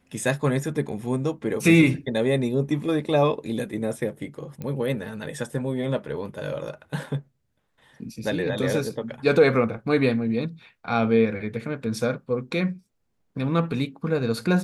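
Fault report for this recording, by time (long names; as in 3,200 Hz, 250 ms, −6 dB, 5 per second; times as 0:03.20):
0:04.62: click −21 dBFS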